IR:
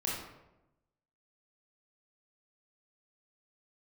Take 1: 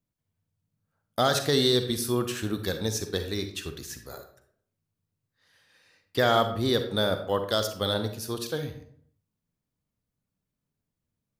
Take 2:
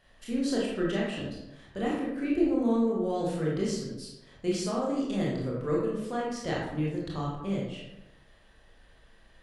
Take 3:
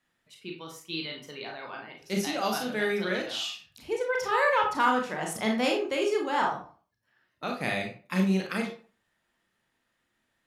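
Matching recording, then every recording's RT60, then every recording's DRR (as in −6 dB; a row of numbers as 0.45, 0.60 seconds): 2; 0.60, 0.95, 0.40 seconds; 7.5, −5.0, 0.5 decibels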